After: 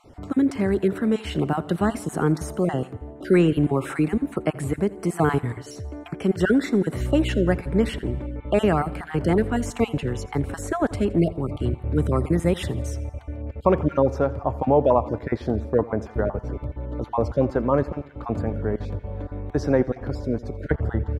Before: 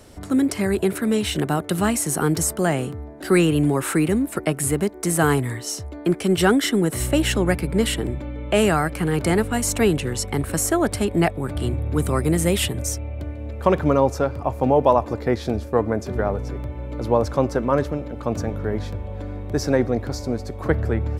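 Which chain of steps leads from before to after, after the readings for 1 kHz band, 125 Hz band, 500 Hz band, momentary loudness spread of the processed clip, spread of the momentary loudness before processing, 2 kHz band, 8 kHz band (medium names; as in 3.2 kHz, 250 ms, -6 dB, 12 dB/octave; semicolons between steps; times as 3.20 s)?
-3.0 dB, -1.5 dB, -1.5 dB, 11 LU, 10 LU, -5.5 dB, -16.0 dB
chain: random holes in the spectrogram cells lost 21%; low-pass 1.4 kHz 6 dB/octave; on a send: feedback delay 84 ms, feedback 57%, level -20 dB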